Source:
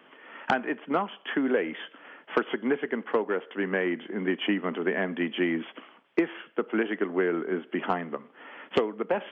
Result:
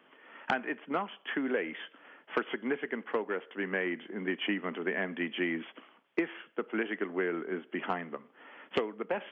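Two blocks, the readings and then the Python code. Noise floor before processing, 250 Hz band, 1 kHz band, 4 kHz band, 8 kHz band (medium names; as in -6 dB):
-57 dBFS, -6.5 dB, -5.5 dB, -3.5 dB, no reading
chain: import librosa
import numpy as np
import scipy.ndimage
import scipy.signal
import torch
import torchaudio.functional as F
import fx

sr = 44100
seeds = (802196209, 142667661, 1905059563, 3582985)

y = fx.dynamic_eq(x, sr, hz=2200.0, q=1.2, threshold_db=-43.0, ratio=4.0, max_db=5)
y = y * 10.0 ** (-6.5 / 20.0)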